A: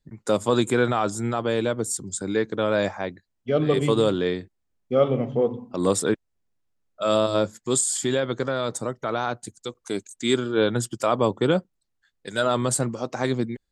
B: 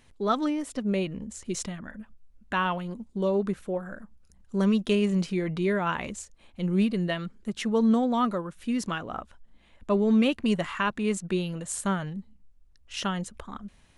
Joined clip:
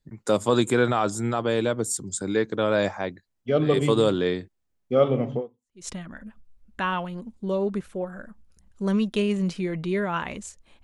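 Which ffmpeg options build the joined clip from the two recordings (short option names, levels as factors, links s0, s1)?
-filter_complex "[0:a]apad=whole_dur=10.83,atrim=end=10.83,atrim=end=5.88,asetpts=PTS-STARTPTS[s0];[1:a]atrim=start=1.09:end=6.56,asetpts=PTS-STARTPTS[s1];[s0][s1]acrossfade=d=0.52:c1=exp:c2=exp"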